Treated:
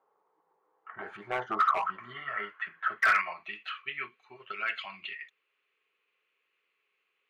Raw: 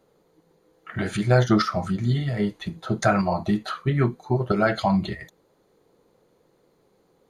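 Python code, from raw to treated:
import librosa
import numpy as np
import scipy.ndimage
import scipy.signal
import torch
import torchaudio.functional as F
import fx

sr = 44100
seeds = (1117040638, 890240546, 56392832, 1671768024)

y = fx.filter_sweep_bandpass(x, sr, from_hz=860.0, to_hz=2600.0, start_s=1.64, end_s=3.6, q=6.2)
y = fx.spec_box(y, sr, start_s=1.6, length_s=1.73, low_hz=520.0, high_hz=3400.0, gain_db=8)
y = np.clip(y, -10.0 ** (-28.5 / 20.0), 10.0 ** (-28.5 / 20.0))
y = fx.band_shelf(y, sr, hz=1900.0, db=9.5, octaves=1.7)
y = fx.small_body(y, sr, hz=(410.0, 1100.0), ring_ms=45, db=9)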